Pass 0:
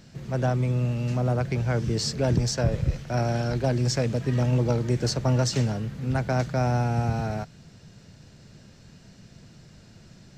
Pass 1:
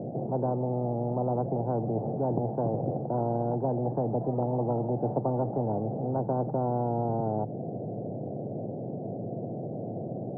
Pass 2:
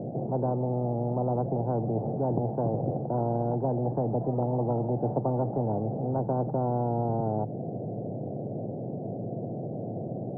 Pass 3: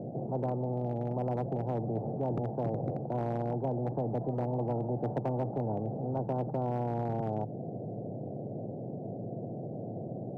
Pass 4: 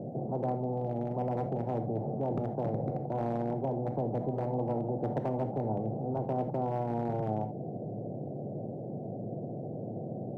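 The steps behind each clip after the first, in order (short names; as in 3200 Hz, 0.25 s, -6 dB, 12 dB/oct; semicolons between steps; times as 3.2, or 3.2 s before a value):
Chebyshev band-pass 110–750 Hz, order 5; spectral compressor 4:1
low shelf 95 Hz +5 dB
hard clip -19.5 dBFS, distortion -25 dB; gain -4.5 dB
non-linear reverb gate 0.1 s flat, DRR 8 dB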